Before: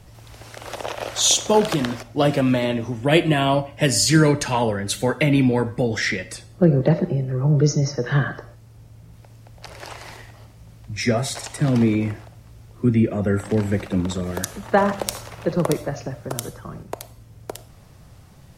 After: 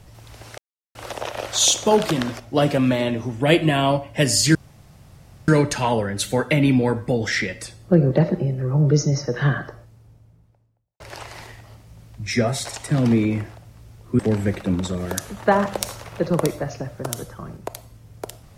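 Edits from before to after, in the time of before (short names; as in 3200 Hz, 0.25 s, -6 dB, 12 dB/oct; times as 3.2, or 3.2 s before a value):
0.58 insert silence 0.37 s
4.18 insert room tone 0.93 s
8.14–9.7 studio fade out
12.89–13.45 cut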